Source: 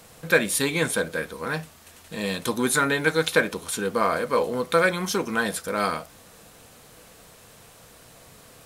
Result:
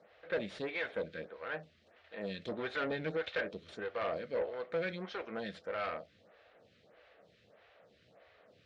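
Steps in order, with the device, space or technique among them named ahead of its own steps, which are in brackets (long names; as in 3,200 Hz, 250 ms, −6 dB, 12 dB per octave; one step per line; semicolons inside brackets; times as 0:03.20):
0:02.51–0:03.17: low-shelf EQ 500 Hz +7.5 dB
vibe pedal into a guitar amplifier (phaser with staggered stages 1.6 Hz; tube saturation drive 23 dB, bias 0.5; loudspeaker in its box 83–3,900 Hz, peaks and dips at 140 Hz −7 dB, 260 Hz −6 dB, 590 Hz +7 dB, 1,000 Hz −8 dB, 1,900 Hz +4 dB)
level −7.5 dB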